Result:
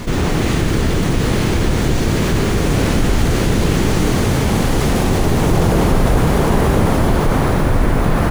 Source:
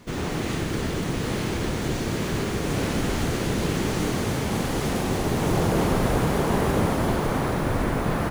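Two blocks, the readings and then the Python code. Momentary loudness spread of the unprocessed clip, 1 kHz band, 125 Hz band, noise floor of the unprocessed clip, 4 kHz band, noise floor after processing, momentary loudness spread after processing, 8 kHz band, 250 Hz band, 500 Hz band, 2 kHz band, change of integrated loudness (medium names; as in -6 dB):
5 LU, +7.0 dB, +10.5 dB, -28 dBFS, +8.0 dB, -17 dBFS, 2 LU, +7.5 dB, +8.5 dB, +7.5 dB, +7.5 dB, +9.0 dB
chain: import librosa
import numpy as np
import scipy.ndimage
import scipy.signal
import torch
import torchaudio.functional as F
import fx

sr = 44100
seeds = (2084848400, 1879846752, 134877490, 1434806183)

y = fx.low_shelf(x, sr, hz=69.0, db=11.5)
y = fx.env_flatten(y, sr, amount_pct=50)
y = y * librosa.db_to_amplitude(4.0)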